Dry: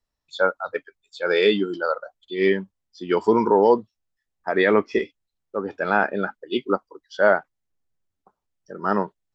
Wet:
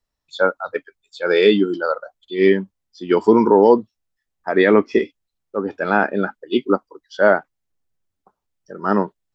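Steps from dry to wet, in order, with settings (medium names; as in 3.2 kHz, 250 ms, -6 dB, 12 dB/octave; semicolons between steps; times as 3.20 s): dynamic bell 270 Hz, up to +6 dB, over -32 dBFS, Q 1.2; trim +2 dB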